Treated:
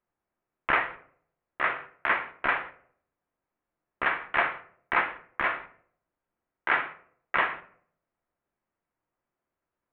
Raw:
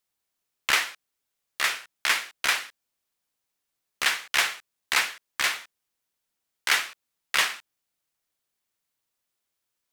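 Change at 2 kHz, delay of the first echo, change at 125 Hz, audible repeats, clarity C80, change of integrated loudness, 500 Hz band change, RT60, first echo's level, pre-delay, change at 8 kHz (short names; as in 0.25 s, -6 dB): -1.5 dB, none, n/a, none, 18.5 dB, -3.0 dB, +6.5 dB, 0.60 s, none, 3 ms, under -40 dB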